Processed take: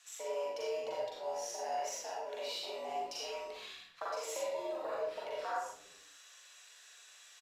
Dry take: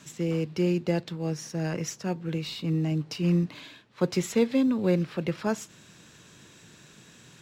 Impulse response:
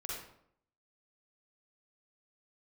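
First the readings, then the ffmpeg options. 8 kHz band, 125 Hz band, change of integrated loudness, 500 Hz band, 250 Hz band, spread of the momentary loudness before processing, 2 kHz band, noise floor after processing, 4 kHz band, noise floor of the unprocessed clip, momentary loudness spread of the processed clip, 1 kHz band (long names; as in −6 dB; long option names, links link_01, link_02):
−4.5 dB, below −40 dB, −11.5 dB, −7.5 dB, −31.5 dB, 9 LU, −8.0 dB, −59 dBFS, −4.5 dB, −54 dBFS, 17 LU, +2.0 dB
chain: -filter_complex "[0:a]afwtdn=0.0282,highpass=frequency=540:width=0.5412,highpass=frequency=540:width=1.3066,tiltshelf=frequency=1300:gain=-5.5,acompressor=threshold=-46dB:ratio=5,afreqshift=90,asplit=2[link_01][link_02];[link_02]adelay=40,volume=-4dB[link_03];[link_01][link_03]amix=inputs=2:normalize=0,asplit=5[link_04][link_05][link_06][link_07][link_08];[link_05]adelay=118,afreqshift=-110,volume=-21dB[link_09];[link_06]adelay=236,afreqshift=-220,volume=-26.8dB[link_10];[link_07]adelay=354,afreqshift=-330,volume=-32.7dB[link_11];[link_08]adelay=472,afreqshift=-440,volume=-38.5dB[link_12];[link_04][link_09][link_10][link_11][link_12]amix=inputs=5:normalize=0[link_13];[1:a]atrim=start_sample=2205,afade=type=out:start_time=0.28:duration=0.01,atrim=end_sample=12789[link_14];[link_13][link_14]afir=irnorm=-1:irlink=0,aresample=32000,aresample=44100,volume=9.5dB"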